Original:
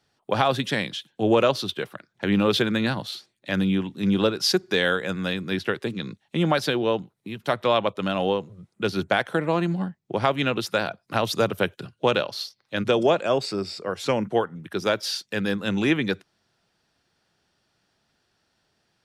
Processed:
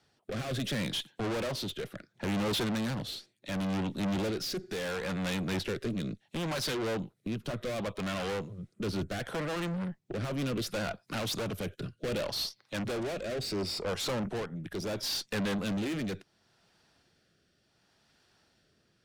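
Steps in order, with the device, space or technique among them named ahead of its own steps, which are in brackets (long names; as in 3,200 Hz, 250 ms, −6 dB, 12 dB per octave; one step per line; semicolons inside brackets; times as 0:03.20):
overdriven rotary cabinet (tube saturation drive 34 dB, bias 0.4; rotating-speaker cabinet horn 0.7 Hz)
level +5 dB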